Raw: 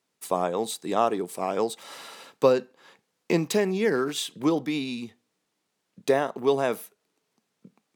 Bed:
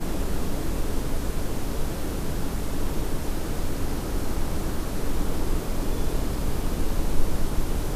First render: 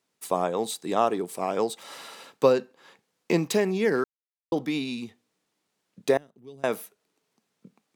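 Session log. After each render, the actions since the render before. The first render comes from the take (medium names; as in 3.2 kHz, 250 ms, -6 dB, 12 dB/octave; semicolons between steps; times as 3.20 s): 4.04–4.52 s: mute; 6.17–6.64 s: amplifier tone stack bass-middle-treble 10-0-1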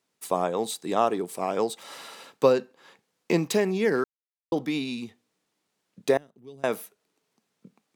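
no audible change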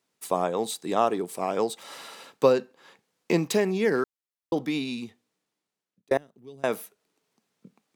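4.98–6.11 s: fade out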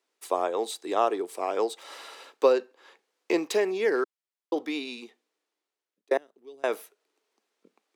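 Chebyshev high-pass 340 Hz, order 3; treble shelf 7.7 kHz -8 dB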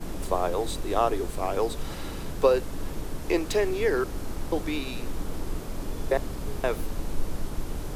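add bed -6.5 dB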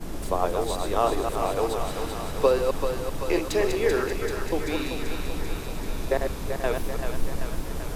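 chunks repeated in reverse 129 ms, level -5 dB; on a send: thinning echo 387 ms, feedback 71%, high-pass 430 Hz, level -6 dB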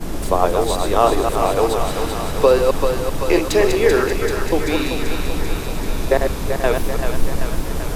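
trim +8.5 dB; peak limiter -1 dBFS, peak gain reduction 3 dB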